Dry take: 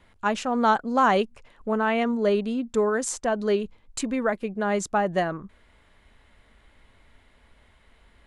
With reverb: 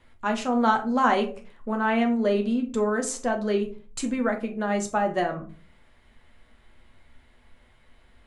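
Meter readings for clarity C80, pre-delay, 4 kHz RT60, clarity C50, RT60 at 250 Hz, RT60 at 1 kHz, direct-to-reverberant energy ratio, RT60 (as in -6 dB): 18.0 dB, 8 ms, 0.20 s, 13.5 dB, 0.55 s, 0.35 s, 3.5 dB, 0.40 s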